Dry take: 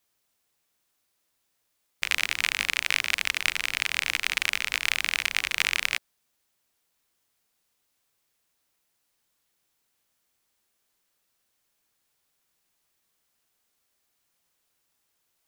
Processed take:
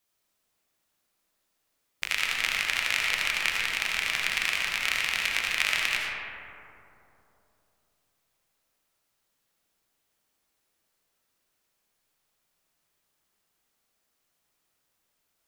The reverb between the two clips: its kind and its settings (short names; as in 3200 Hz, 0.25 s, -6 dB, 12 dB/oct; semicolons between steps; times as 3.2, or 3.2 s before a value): digital reverb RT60 3.1 s, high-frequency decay 0.3×, pre-delay 40 ms, DRR -2 dB; gain -3.5 dB